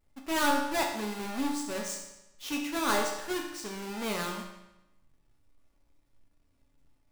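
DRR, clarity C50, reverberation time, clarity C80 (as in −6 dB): −0.5 dB, 4.5 dB, 0.95 s, 7.0 dB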